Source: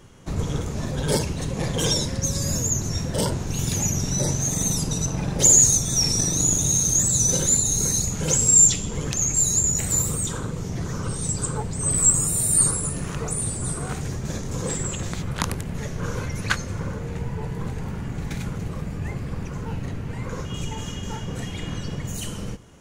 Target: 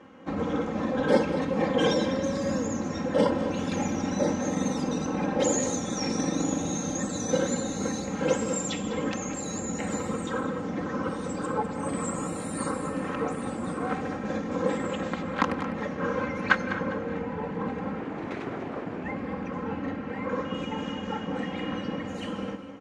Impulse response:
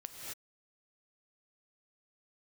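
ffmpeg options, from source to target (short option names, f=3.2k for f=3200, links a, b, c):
-filter_complex "[0:a]aecho=1:1:3.8:0.78,asettb=1/sr,asplit=3[a][b][c];[a]atrim=end=18.004[d];[b]atrim=start=18:end=19.04,asetpts=PTS-STARTPTS,afade=t=in:d=0.004:c=qsin,afade=t=out:st=1.036:d=0.004:c=qsin,aeval=exprs='abs(val(0))':c=same[e];[c]atrim=start=19.036[f];[d][e]acrossfade=d=0.004:c1=hsin:c2=qsin[g];[g][f]acrossfade=d=0.004:c1=qsin:c2=hsin,highpass=210,lowpass=2.3k,aecho=1:1:202|404|606|808:0.237|0.0996|0.0418|0.0176,asplit=2[h][i];[1:a]atrim=start_sample=2205,lowpass=2.4k[j];[i][j]afir=irnorm=-1:irlink=0,volume=-5dB[k];[h][k]amix=inputs=2:normalize=0"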